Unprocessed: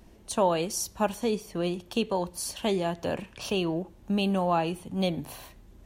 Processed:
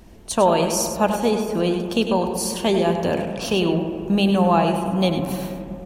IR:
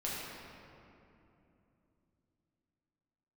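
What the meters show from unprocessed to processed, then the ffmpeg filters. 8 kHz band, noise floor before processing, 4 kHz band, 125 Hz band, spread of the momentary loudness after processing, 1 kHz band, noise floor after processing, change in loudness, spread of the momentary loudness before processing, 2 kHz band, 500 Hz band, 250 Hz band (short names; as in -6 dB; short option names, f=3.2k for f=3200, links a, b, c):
+7.5 dB, -54 dBFS, +7.5 dB, +9.5 dB, 7 LU, +8.5 dB, -38 dBFS, +8.5 dB, 8 LU, +8.0 dB, +8.5 dB, +9.5 dB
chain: -filter_complex "[0:a]aecho=1:1:100:0.355,asplit=2[a][b];[1:a]atrim=start_sample=2205,lowpass=2.2k,adelay=80[c];[b][c]afir=irnorm=-1:irlink=0,volume=-10.5dB[d];[a][d]amix=inputs=2:normalize=0,volume=7dB"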